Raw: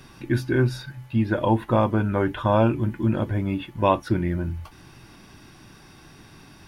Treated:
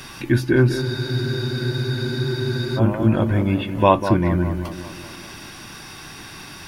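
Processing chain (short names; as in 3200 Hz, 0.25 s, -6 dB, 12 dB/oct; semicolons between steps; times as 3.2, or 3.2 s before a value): tape echo 0.195 s, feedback 61%, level -8 dB, low-pass 1600 Hz; spectral freeze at 0.84, 1.94 s; mismatched tape noise reduction encoder only; gain +5 dB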